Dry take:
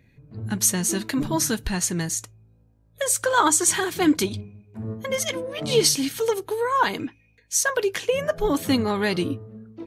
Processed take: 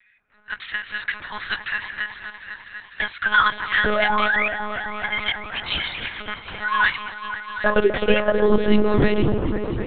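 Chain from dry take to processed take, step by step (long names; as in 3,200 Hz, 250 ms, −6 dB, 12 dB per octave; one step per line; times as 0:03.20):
in parallel at −8 dB: hard clipping −20 dBFS, distortion −9 dB
on the sum: high-pass filter sweep 1,600 Hz → 81 Hz, 0:06.88–0:09.34
sound drawn into the spectrogram rise, 0:03.85–0:04.48, 410–2,600 Hz −21 dBFS
echo whose low-pass opens from repeat to repeat 251 ms, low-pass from 750 Hz, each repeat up 1 octave, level −6 dB
one-pitch LPC vocoder at 8 kHz 210 Hz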